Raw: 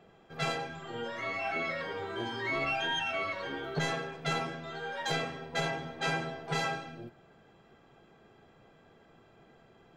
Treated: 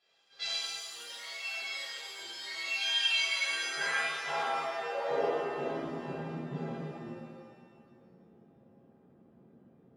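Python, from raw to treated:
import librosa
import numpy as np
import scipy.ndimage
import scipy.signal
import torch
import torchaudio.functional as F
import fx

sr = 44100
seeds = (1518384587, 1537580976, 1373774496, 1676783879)

y = fx.filter_sweep_bandpass(x, sr, from_hz=4500.0, to_hz=210.0, start_s=2.7, end_s=6.05, q=2.8)
y = fx.dereverb_blind(y, sr, rt60_s=1.2)
y = fx.rev_shimmer(y, sr, seeds[0], rt60_s=1.9, semitones=7, shimmer_db=-8, drr_db=-11.5)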